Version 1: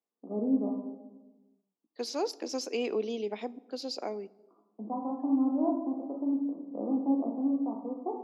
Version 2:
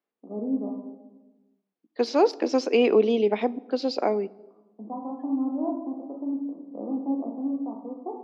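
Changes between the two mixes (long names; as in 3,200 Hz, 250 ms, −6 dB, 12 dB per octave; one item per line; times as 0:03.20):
second voice +12.0 dB
master: add low-pass filter 3,000 Hz 12 dB per octave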